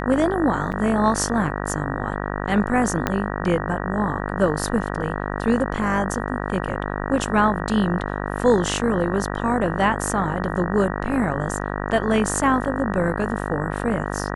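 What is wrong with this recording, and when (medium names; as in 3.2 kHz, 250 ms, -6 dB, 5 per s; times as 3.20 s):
buzz 50 Hz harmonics 38 -27 dBFS
0.72–0.73 s: dropout 6.8 ms
3.07 s: pop -6 dBFS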